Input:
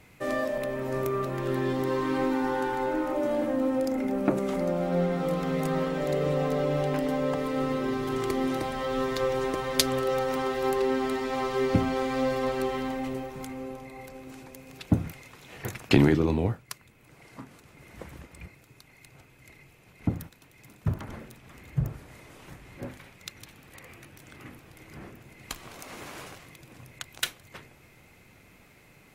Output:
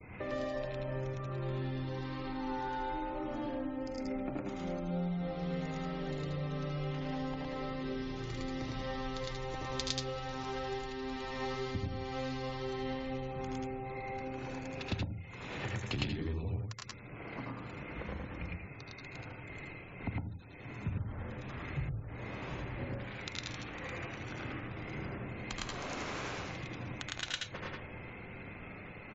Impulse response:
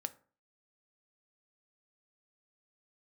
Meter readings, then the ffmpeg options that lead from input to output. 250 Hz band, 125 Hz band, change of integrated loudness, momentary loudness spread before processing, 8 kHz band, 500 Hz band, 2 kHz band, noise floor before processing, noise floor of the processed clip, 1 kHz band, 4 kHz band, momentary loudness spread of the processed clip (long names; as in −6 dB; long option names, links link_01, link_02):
−10.5 dB, −6.0 dB, −11.5 dB, 20 LU, −9.5 dB, −12.5 dB, −5.5 dB, −57 dBFS, −48 dBFS, −8.5 dB, −5.5 dB, 8 LU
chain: -filter_complex "[0:a]aecho=1:1:74|84:0.596|0.531,aresample=16000,aresample=44100,highshelf=frequency=3200:gain=-11.5,acrossover=split=120|3000[link_01][link_02][link_03];[link_02]acompressor=threshold=-47dB:ratio=2[link_04];[link_01][link_04][link_03]amix=inputs=3:normalize=0,agate=range=-33dB:threshold=-55dB:ratio=3:detection=peak,acompressor=threshold=-45dB:ratio=3,asplit=2[link_05][link_06];[link_06]tiltshelf=frequency=970:gain=-3.5[link_07];[1:a]atrim=start_sample=2205,adelay=108[link_08];[link_07][link_08]afir=irnorm=-1:irlink=0,volume=1dB[link_09];[link_05][link_09]amix=inputs=2:normalize=0,afftfilt=real='re*gte(hypot(re,im),0.001)':imag='im*gte(hypot(re,im),0.001)':win_size=1024:overlap=0.75,volume=6dB"